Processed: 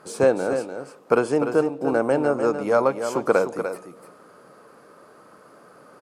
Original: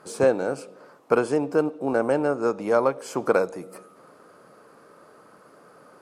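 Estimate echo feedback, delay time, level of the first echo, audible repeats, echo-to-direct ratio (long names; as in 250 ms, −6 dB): repeats not evenly spaced, 297 ms, −8.5 dB, 1, −8.5 dB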